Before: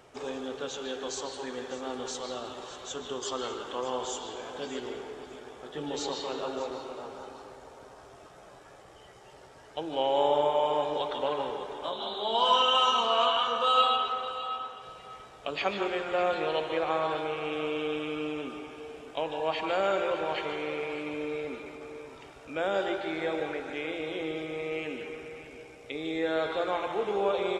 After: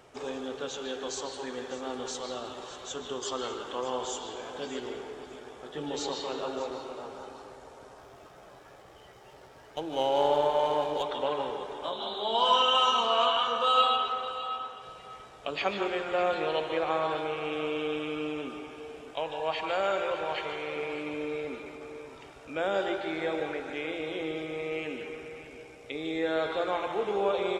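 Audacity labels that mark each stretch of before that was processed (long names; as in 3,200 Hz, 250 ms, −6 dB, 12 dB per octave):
7.980000	11.030000	windowed peak hold over 3 samples
19.140000	20.760000	parametric band 260 Hz −7.5 dB 1.1 octaves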